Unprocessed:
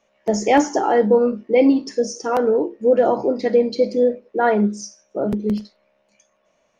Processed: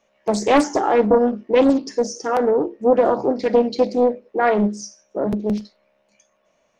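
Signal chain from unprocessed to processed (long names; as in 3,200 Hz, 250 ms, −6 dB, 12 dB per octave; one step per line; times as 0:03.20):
highs frequency-modulated by the lows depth 0.6 ms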